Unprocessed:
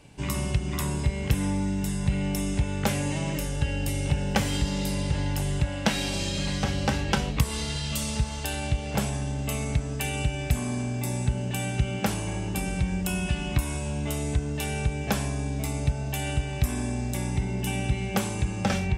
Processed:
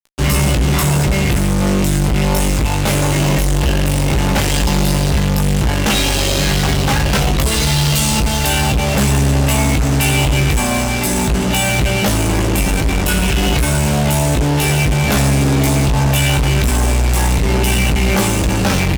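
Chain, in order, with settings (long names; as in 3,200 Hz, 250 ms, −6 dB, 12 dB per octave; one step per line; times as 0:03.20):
multi-voice chorus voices 6, 0.31 Hz, delay 20 ms, depth 1.9 ms
fuzz pedal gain 43 dB, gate −43 dBFS
double-tracking delay 15 ms −7.5 dB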